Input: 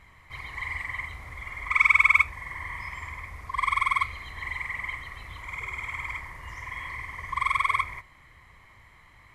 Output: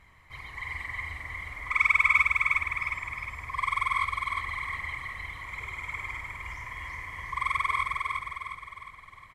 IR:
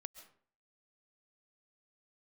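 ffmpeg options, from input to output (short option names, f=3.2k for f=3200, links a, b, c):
-af "aecho=1:1:358|716|1074|1432|1790|2148:0.668|0.321|0.154|0.0739|0.0355|0.017,volume=-3.5dB"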